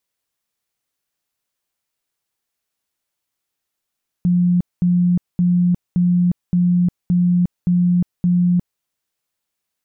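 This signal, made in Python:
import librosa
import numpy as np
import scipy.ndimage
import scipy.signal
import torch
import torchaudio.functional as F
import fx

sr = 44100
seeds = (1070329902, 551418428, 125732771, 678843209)

y = fx.tone_burst(sr, hz=177.0, cycles=63, every_s=0.57, bursts=8, level_db=-12.0)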